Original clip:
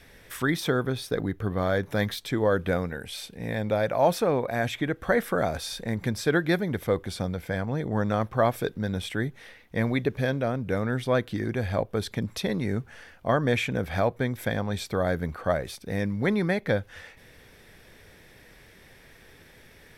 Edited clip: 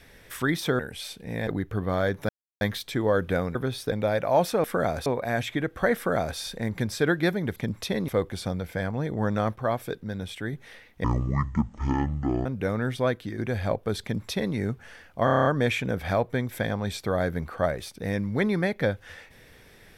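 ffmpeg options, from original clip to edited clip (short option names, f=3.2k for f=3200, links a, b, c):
-filter_complex "[0:a]asplit=22[a][b][c][d][e][f][g][h][i][j][k][l][m][n][o][p][q][r][s][t][u][v];[a]atrim=end=0.792[w];[b]atrim=start=2.918:end=3.602[x];[c]atrim=start=1.158:end=1.98,asetpts=PTS-STARTPTS,afade=t=out:st=0.818:d=0.004:c=hsin,apad=pad_dur=0.32[y];[d]atrim=start=1.98:end=2.922,asetpts=PTS-STARTPTS,afade=t=in:d=0.004:c=hsin[z];[e]atrim=start=0.788:end=1.162[aa];[f]atrim=start=3.598:end=4.322[ab];[g]atrim=start=5.218:end=5.642[ac];[h]atrim=start=4.318:end=6.822[ad];[i]atrim=start=12.098:end=12.622[ae];[j]atrim=start=6.818:end=8.302[af];[k]atrim=start=8.298:end=9.272,asetpts=PTS-STARTPTS,volume=-4dB[ag];[l]atrim=start=9.268:end=9.784[ah];[m]atrim=start=9.78:end=10.53,asetpts=PTS-STARTPTS,asetrate=23373,aresample=44100[ai];[n]atrim=start=10.526:end=11.46,asetpts=PTS-STARTPTS,afade=t=out:st=0.534:d=0.4:silence=0.501187[aj];[o]atrim=start=11.46:end=13.352,asetpts=PTS-STARTPTS,afade=t=in:d=0.004:c=hsin:silence=0.501187[ak];[p]atrim=start=13.318:end=13.352[al];[q]atrim=start=13.318:end=13.352[am];[r]atrim=start=13.318:end=13.352[an];[s]atrim=start=13.318:end=13.352[ao];[t]atrim=start=13.318:end=13.352[ap];[u]atrim=start=13.318:end=13.352[aq];[v]atrim=start=13.318[ar];[w][x]acrossfade=d=0.004:c1=hsin:c2=hsin[as];[y][z]concat=n=2:v=0:a=1[at];[as][at]acrossfade=d=0.004:c1=hsin:c2=hsin[au];[au][aa]acrossfade=d=0.004:c1=hsin:c2=hsin[av];[av][ab]acrossfade=d=0.004:c1=hsin:c2=hsin[aw];[aw][ac]acrossfade=d=0.004:c1=hsin:c2=hsin[ax];[ax][ad]acrossfade=d=0.004:c1=hsin:c2=hsin[ay];[ay][ae]acrossfade=d=0.004:c1=hsin:c2=hsin[az];[az][af]acrossfade=d=0.004:c1=hsin:c2=hsin[ba];[ba][ag]acrossfade=d=0.004:c1=hsin:c2=hsin[bb];[bb][ah]acrossfade=d=0.004:c1=hsin:c2=hsin[bc];[bc][ai]acrossfade=d=0.004:c1=hsin:c2=hsin[bd];[aj][ak]concat=n=2:v=0:a=1[be];[bd][be]acrossfade=d=0.004:c1=hsin:c2=hsin[bf];[bf][al]acrossfade=d=0.004:c1=hsin:c2=hsin[bg];[bg][am]acrossfade=d=0.004:c1=hsin:c2=hsin[bh];[bh][an]acrossfade=d=0.004:c1=hsin:c2=hsin[bi];[bi][ao]acrossfade=d=0.004:c1=hsin:c2=hsin[bj];[bj][ap]acrossfade=d=0.004:c1=hsin:c2=hsin[bk];[bk][aq]acrossfade=d=0.004:c1=hsin:c2=hsin[bl];[bl][ar]acrossfade=d=0.004:c1=hsin:c2=hsin"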